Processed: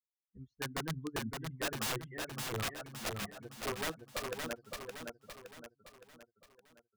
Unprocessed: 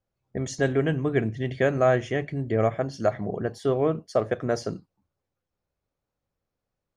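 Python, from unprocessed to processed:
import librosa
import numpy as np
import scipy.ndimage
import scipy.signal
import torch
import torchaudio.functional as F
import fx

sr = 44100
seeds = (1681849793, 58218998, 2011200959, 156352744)

y = fx.bin_expand(x, sr, power=3.0)
y = fx.ladder_lowpass(y, sr, hz=1400.0, resonance_pct=65)
y = (np.mod(10.0 ** (33.0 / 20.0) * y + 1.0, 2.0) - 1.0) / 10.0 ** (33.0 / 20.0)
y = fx.echo_feedback(y, sr, ms=566, feedback_pct=47, wet_db=-4.5)
y = y * 10.0 ** (2.5 / 20.0)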